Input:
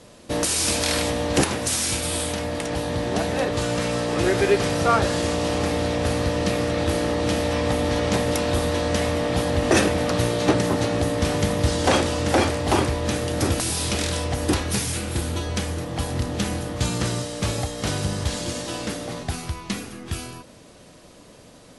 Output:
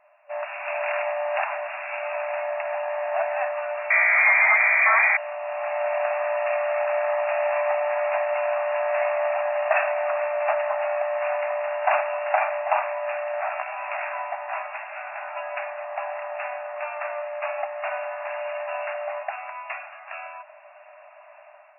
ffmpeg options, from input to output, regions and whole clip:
-filter_complex "[0:a]asettb=1/sr,asplit=3[s0][s1][s2];[s0]atrim=end=3.904[s3];[s1]atrim=start=3.9:end=5.17,asetpts=PTS-STARTPTS,afade=t=in:d=0.004:c=qsin,afade=t=out:st=1.266:d=0.004:c=qsin,aeval=exprs='0.398*sin(PI/2*2.51*val(0)/0.398)':c=same,lowpass=f=2100:t=q:w=0.5098,lowpass=f=2100:t=q:w=0.6013,lowpass=f=2100:t=q:w=0.9,lowpass=f=2100:t=q:w=2.563,afreqshift=-2500[s4];[s2]atrim=start=5.166[s5];[s3][s4]acrossfade=d=0.004:c1=hsin:c2=qsin[s6];[s6][s5]acrossfade=d=0.004:c1=qsin:c2=hsin,asettb=1/sr,asplit=3[s7][s8][s9];[s7]atrim=end=13.404[s10];[s8]atrim=start=13.4:end=15.36,asetpts=PTS-STARTPTS,afade=t=in:d=0.004:c=qsin,afade=t=out:st=1.956:d=0.004:c=qsin,highshelf=f=4000:g=-10,asplit=2[s11][s12];[s12]adelay=16,volume=0.708[s13];[s11][s13]amix=inputs=2:normalize=0,atrim=end_sample=86436[s14];[s9]atrim=start=15.356[s15];[s10][s14]acrossfade=d=0.004:c1=hsin:c2=qsin[s16];[s16][s15]acrossfade=d=0.004:c1=qsin:c2=hsin,dynaudnorm=f=170:g=5:m=3.76,equalizer=f=1700:w=0.41:g=-7.5,afftfilt=real='re*between(b*sr/4096,580,2800)':imag='im*between(b*sr/4096,580,2800)':win_size=4096:overlap=0.75"

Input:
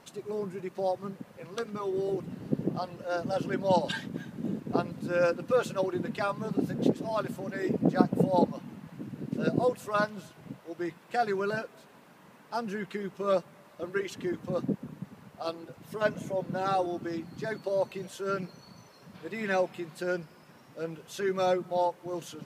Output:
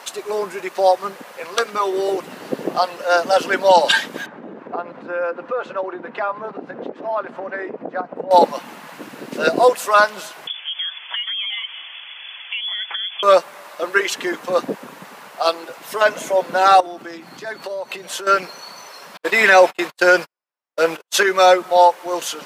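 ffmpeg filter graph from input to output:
-filter_complex "[0:a]asettb=1/sr,asplit=3[s0][s1][s2];[s0]atrim=end=4.264[s3];[s1]atrim=start=4.26:end=8.31,asetpts=PTS-STARTPTS,afade=t=in:d=0.004:c=qsin,afade=t=out:st=4.046:d=0.004:c=qsin,lowpass=1500,acompressor=threshold=0.0141:ratio=3:attack=3.2:release=140:knee=1:detection=peak[s4];[s2]atrim=start=8.306[s5];[s3][s4]acrossfade=d=0.004:c1=hsin:c2=qsin[s6];[s6][s5]acrossfade=d=0.004:c1=qsin:c2=hsin,asettb=1/sr,asplit=3[s7][s8][s9];[s7]atrim=end=10.474[s10];[s8]atrim=start=10.47:end=13.23,asetpts=PTS-STARTPTS,afade=t=in:d=0.004:c=qsin,afade=t=out:st=2.756:d=0.004:c=qsin,acompressor=threshold=0.00891:ratio=16:attack=3.2:release=140:knee=1:detection=peak,lowpass=f=3100:t=q:w=0.5098,lowpass=f=3100:t=q:w=0.6013,lowpass=f=3100:t=q:w=0.9,lowpass=f=3100:t=q:w=2.563,afreqshift=-3600[s11];[s9]atrim=start=13.226[s12];[s10][s11]acrossfade=d=0.004:c1=hsin:c2=qsin[s13];[s13][s12]acrossfade=d=0.004:c1=qsin:c2=hsin,asettb=1/sr,asplit=3[s14][s15][s16];[s14]atrim=end=16.804[s17];[s15]atrim=start=16.8:end=18.27,asetpts=PTS-STARTPTS,afade=t=in:d=0.004:c=qsin,afade=t=out:st=1.466:d=0.004:c=qsin,bass=f=250:g=8,treble=f=4000:g=-2,acompressor=threshold=0.0112:ratio=6:attack=3.2:release=140:knee=1:detection=peak[s18];[s16]atrim=start=18.266[s19];[s17][s18]acrossfade=d=0.004:c1=hsin:c2=qsin[s20];[s20][s19]acrossfade=d=0.004:c1=qsin:c2=hsin,asettb=1/sr,asplit=3[s21][s22][s23];[s21]atrim=end=19.174[s24];[s22]atrim=start=19.17:end=21.23,asetpts=PTS-STARTPTS,afade=t=in:d=0.004:c=qsin,afade=t=out:st=2.056:d=0.004:c=qsin,agate=range=0.00112:threshold=0.00631:ratio=16:release=100:detection=peak,acontrast=50[s25];[s23]atrim=start=21.226[s26];[s24][s25]acrossfade=d=0.004:c1=hsin:c2=qsin[s27];[s27][s26]acrossfade=d=0.004:c1=qsin:c2=hsin,highpass=680,alimiter=level_in=10.6:limit=0.891:release=50:level=0:latency=1,volume=0.891"

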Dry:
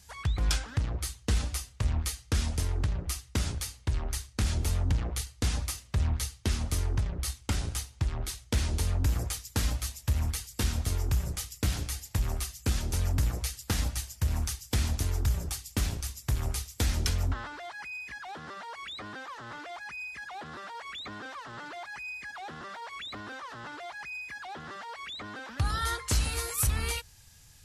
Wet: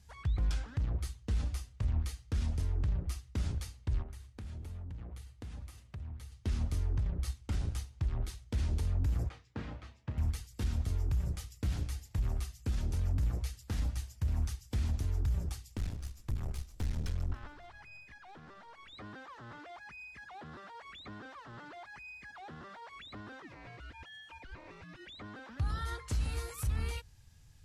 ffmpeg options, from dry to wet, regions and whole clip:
-filter_complex "[0:a]asettb=1/sr,asplit=3[s0][s1][s2];[s0]atrim=end=4.024[s3];[s1]atrim=start=4.02:end=6.32,asetpts=PTS-STARTPTS,afade=t=in:d=0.004:c=qsin,afade=t=out:st=2.296:d=0.004:c=qsin,highpass=61,equalizer=f=5500:t=o:w=1.1:g=-4.5,acompressor=threshold=0.00891:ratio=4:attack=3.2:release=140:knee=1:detection=peak[s4];[s2]atrim=start=6.316[s5];[s3][s4]acrossfade=d=0.004:c1=hsin:c2=qsin[s6];[s6][s5]acrossfade=d=0.004:c1=qsin:c2=hsin,asettb=1/sr,asplit=3[s7][s8][s9];[s7]atrim=end=9.294[s10];[s8]atrim=start=9.29:end=10.18,asetpts=PTS-STARTPTS,afade=t=in:d=0.004:c=qsin,afade=t=out:st=0.886:d=0.004:c=qsin,highpass=160,lowpass=2300,asplit=2[s11][s12];[s12]adelay=32,volume=0.282[s13];[s11][s13]amix=inputs=2:normalize=0,atrim=end_sample=39249[s14];[s9]atrim=start=10.176[s15];[s10][s14]acrossfade=d=0.004:c1=hsin:c2=qsin[s16];[s16][s15]acrossfade=d=0.004:c1=qsin:c2=hsin,asettb=1/sr,asplit=3[s17][s18][s19];[s17]atrim=end=15.774[s20];[s18]atrim=start=15.77:end=18.93,asetpts=PTS-STARTPTS,afade=t=in:d=0.004:c=qsin,afade=t=out:st=3.156:d=0.004:c=qsin,asplit=6[s21][s22][s23][s24][s25][s26];[s22]adelay=141,afreqshift=-36,volume=0.1[s27];[s23]adelay=282,afreqshift=-72,volume=0.0617[s28];[s24]adelay=423,afreqshift=-108,volume=0.0385[s29];[s25]adelay=564,afreqshift=-144,volume=0.0237[s30];[s26]adelay=705,afreqshift=-180,volume=0.0148[s31];[s21][s27][s28][s29][s30][s31]amix=inputs=6:normalize=0,atrim=end_sample=139356,aeval=exprs='(tanh(28.2*val(0)+0.75)-tanh(0.75))/28.2':c=same[s32];[s19]atrim=start=18.926[s33];[s20][s32]acrossfade=d=0.004:c1=hsin:c2=qsin[s34];[s34][s33]acrossfade=d=0.004:c1=qsin:c2=hsin,asettb=1/sr,asplit=3[s35][s36][s37];[s35]atrim=end=23.424[s38];[s36]atrim=start=23.42:end=25.07,asetpts=PTS-STARTPTS,afade=t=in:d=0.004:c=qsin,afade=t=out:st=1.646:d=0.004:c=qsin,aecho=1:1:4.7:0.41,atrim=end_sample=72765,aeval=exprs='val(0)*sin(2*PI*760*n/s)':c=same[s39];[s37]atrim=start=25.066[s40];[s38][s39]acrossfade=d=0.004:c1=hsin:c2=qsin[s41];[s41][s40]acrossfade=d=0.004:c1=qsin:c2=hsin,highshelf=f=5600:g=-8,alimiter=limit=0.0631:level=0:latency=1:release=29,lowshelf=f=330:g=8.5,volume=0.376"

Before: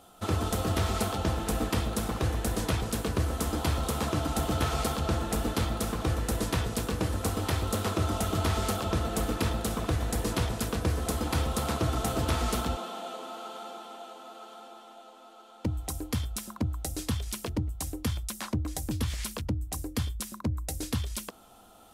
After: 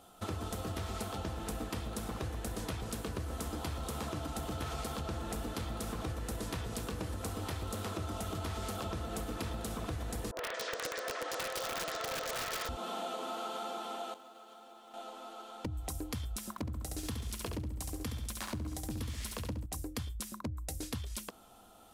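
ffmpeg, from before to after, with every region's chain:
-filter_complex "[0:a]asettb=1/sr,asplit=3[s0][s1][s2];[s0]atrim=end=10.314[s3];[s1]atrim=start=10.31:end=12.69,asetpts=PTS-STARTPTS,afade=t=in:d=0.004:c=qsin,afade=t=out:st=2.376:d=0.004:c=qsin,highpass=f=490:w=0.5412,highpass=f=490:w=1.3066,equalizer=f=540:t=q:w=4:g=5,equalizer=f=830:t=q:w=4:g=-5,equalizer=f=1800:t=q:w=4:g=7,lowpass=f=6200:w=0.5412,lowpass=f=6200:w=1.3066,acrossover=split=930|3200[s4][s5][s6];[s5]adelay=70[s7];[s6]adelay=230[s8];[s4][s7][s8]amix=inputs=3:normalize=0,atrim=end_sample=104958,aeval=exprs='(mod(25.1*val(0)+1,2)-1)/25.1':c=same[s9];[s2]atrim=start=12.686[s10];[s3][s9]acrossfade=d=0.004:c1=hsin:c2=qsin[s11];[s11][s10]acrossfade=d=0.004:c1=qsin:c2=hsin,asettb=1/sr,asplit=3[s12][s13][s14];[s12]atrim=end=14.144[s15];[s13]atrim=start=14.14:end=14.94,asetpts=PTS-STARTPTS,afade=t=in:d=0.004:c=qsin,afade=t=out:st=0.796:d=0.004:c=qsin,agate=range=0.0224:threshold=0.00631:ratio=3:release=100:detection=peak,acompressor=threshold=0.002:ratio=20:attack=3.2:release=140:knee=1:detection=peak,acrusher=bits=6:mode=log:mix=0:aa=0.000001[s16];[s14]atrim=start=14.936[s17];[s15][s16]acrossfade=d=0.004:c1=hsin:c2=qsin[s18];[s18][s17]acrossfade=d=0.004:c1=qsin:c2=hsin,asettb=1/sr,asplit=3[s19][s20][s21];[s19]atrim=end=16.514[s22];[s20]atrim=start=16.51:end=19.66,asetpts=PTS-STARTPTS,afade=t=in:d=0.004:c=qsin,afade=t=out:st=3.146:d=0.004:c=qsin,aeval=exprs='sgn(val(0))*max(abs(val(0))-0.00251,0)':c=same,aecho=1:1:68|136|204|272|340:0.531|0.239|0.108|0.0484|0.0218,atrim=end_sample=138915[s23];[s21]atrim=start=19.656[s24];[s22][s23]acrossfade=d=0.004:c1=hsin:c2=qsin[s25];[s25][s24]acrossfade=d=0.004:c1=qsin:c2=hsin,dynaudnorm=f=480:g=17:m=2.37,alimiter=limit=0.106:level=0:latency=1:release=316,acompressor=threshold=0.0224:ratio=4,volume=0.708"

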